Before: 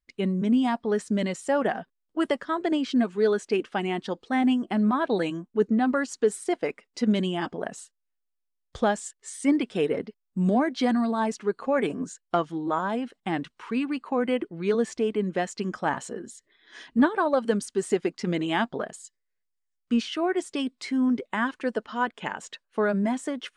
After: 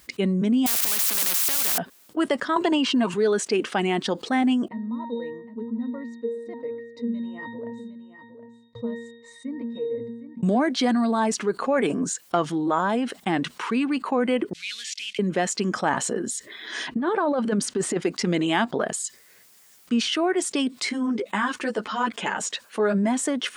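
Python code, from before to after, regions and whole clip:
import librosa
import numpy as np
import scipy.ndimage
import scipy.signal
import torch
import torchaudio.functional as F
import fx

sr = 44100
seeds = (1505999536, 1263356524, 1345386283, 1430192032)

y = fx.chain(x, sr, fx.crossing_spikes(level_db=-23.0),
    fx.spectral_comp(ratio=10.0), at=(0.66, 1.78))
y = fx.chain(y, sr, fx.small_body(hz=(980.0, 2800.0), ring_ms=30, db=16),
    fx.band_squash(depth_pct=70), at=(2.56, 3.14))
y = fx.chain(y, sr, fx.octave_resonator(note='A#', decay_s=0.44),
    fx.echo_single(ms=760, db=-22.0), at=(4.68, 10.43))
y = fx.chain(y, sr, fx.cvsd(bps=64000),
    fx.cheby2_highpass(hz=1000.0, order=4, stop_db=50),
    fx.air_absorb(metres=130.0), at=(14.53, 15.19))
y = fx.chain(y, sr, fx.lowpass(hz=2300.0, slope=6),
    fx.over_compress(threshold_db=-27.0, ratio=-1.0), at=(16.87, 18.02))
y = fx.chain(y, sr, fx.dynamic_eq(hz=6600.0, q=1.1, threshold_db=-49.0, ratio=4.0, max_db=4),
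    fx.ensemble(), at=(20.89, 22.98))
y = scipy.signal.sosfilt(scipy.signal.butter(2, 120.0, 'highpass', fs=sr, output='sos'), y)
y = fx.high_shelf(y, sr, hz=6500.0, db=6.0)
y = fx.env_flatten(y, sr, amount_pct=50)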